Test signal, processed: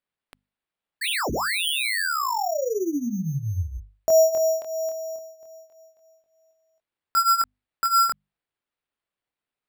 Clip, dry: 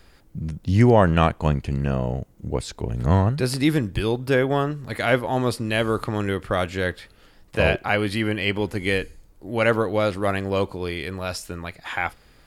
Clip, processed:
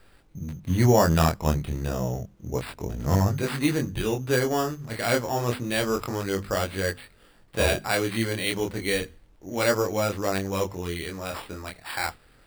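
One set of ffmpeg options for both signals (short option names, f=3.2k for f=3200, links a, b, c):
-af "flanger=delay=20:depth=6.4:speed=0.3,acrusher=samples=7:mix=1:aa=0.000001,bandreject=f=50:t=h:w=6,bandreject=f=100:t=h:w=6,bandreject=f=150:t=h:w=6,bandreject=f=200:t=h:w=6,bandreject=f=250:t=h:w=6"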